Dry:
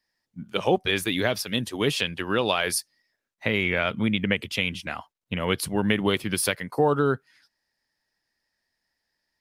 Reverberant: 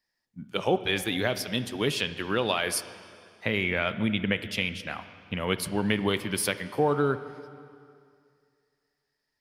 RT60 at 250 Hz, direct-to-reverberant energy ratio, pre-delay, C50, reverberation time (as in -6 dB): 2.4 s, 11.5 dB, 5 ms, 12.5 dB, 2.3 s